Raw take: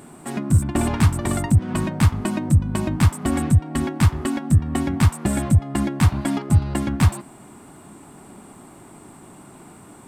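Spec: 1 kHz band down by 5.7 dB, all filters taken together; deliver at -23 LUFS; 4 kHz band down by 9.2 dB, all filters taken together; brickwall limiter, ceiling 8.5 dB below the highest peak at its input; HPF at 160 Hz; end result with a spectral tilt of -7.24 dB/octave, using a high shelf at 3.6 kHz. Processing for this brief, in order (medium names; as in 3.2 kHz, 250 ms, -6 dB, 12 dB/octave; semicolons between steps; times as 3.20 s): high-pass 160 Hz; peaking EQ 1 kHz -6.5 dB; treble shelf 3.6 kHz -7 dB; peaking EQ 4 kHz -7.5 dB; trim +5.5 dB; peak limiter -13 dBFS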